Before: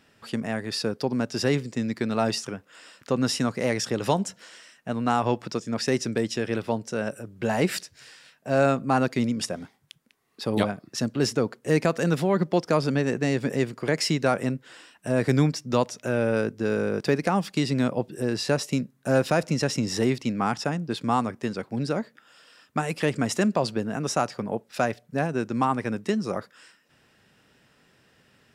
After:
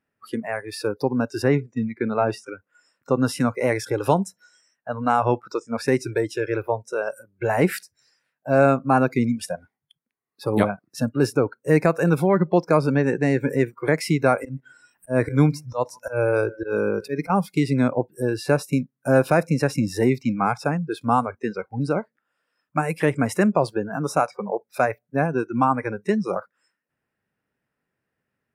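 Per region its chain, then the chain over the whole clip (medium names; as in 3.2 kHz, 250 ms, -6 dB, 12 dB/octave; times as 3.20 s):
1.42–2.47 s: treble shelf 4.4 kHz -10 dB + band-stop 4.3 kHz, Q 15
14.38–17.30 s: upward compressor, threshold -39 dBFS + slow attack 115 ms + feedback delay 153 ms, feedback 38%, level -19 dB
whole clip: spectral noise reduction 23 dB; high-order bell 4.7 kHz -10.5 dB; trim +4.5 dB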